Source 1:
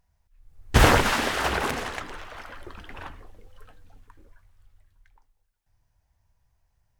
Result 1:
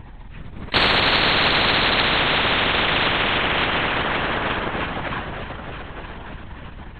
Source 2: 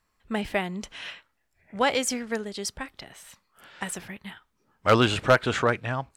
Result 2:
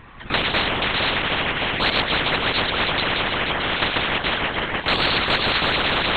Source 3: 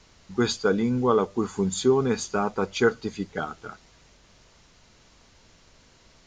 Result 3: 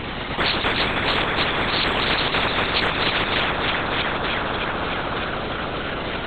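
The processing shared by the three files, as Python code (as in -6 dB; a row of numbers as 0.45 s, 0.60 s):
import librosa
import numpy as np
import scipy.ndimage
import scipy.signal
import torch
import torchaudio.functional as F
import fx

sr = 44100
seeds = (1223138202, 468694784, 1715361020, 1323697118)

p1 = x + fx.echo_alternate(x, sr, ms=153, hz=1100.0, feedback_pct=85, wet_db=-10.0, dry=0)
p2 = fx.lpc_vocoder(p1, sr, seeds[0], excitation='whisper', order=10)
y = fx.spectral_comp(p2, sr, ratio=10.0)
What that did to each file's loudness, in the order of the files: +4.0 LU, +6.0 LU, +4.0 LU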